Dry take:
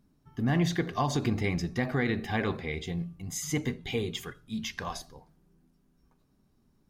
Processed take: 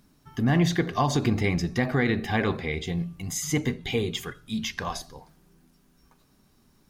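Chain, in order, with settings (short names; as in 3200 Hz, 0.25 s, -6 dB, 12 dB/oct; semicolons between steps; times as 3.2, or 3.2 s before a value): mismatched tape noise reduction encoder only; gain +4.5 dB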